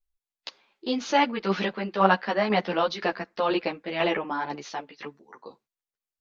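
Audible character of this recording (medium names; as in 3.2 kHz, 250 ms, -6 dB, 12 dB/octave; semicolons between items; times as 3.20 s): tremolo saw down 2 Hz, depth 45%; a shimmering, thickened sound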